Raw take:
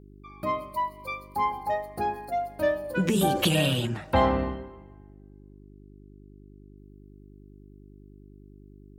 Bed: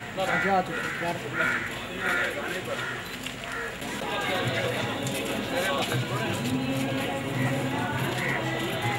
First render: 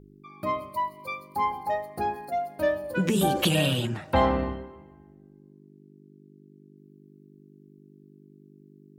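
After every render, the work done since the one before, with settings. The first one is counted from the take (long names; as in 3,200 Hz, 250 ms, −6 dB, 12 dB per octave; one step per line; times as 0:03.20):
hum removal 50 Hz, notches 2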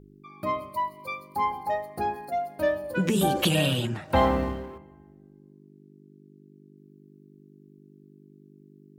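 0:04.10–0:04.78: mu-law and A-law mismatch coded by mu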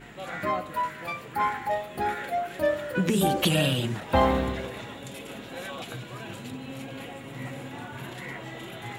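mix in bed −10.5 dB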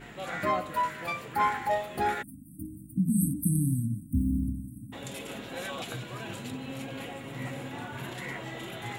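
0:02.22–0:04.93: time-frequency box erased 320–8,000 Hz
dynamic equaliser 7,700 Hz, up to +3 dB, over −50 dBFS, Q 0.76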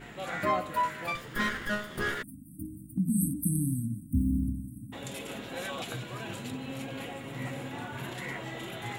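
0:01.15–0:02.23: lower of the sound and its delayed copy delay 0.58 ms
0:02.78–0:04.03: dynamic equaliser 130 Hz, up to −4 dB, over −40 dBFS, Q 1.2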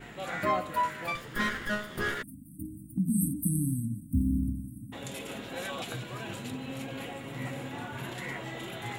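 pitch vibrato 0.72 Hz 6.4 cents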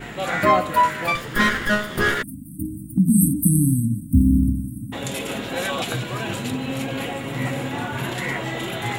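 level +11.5 dB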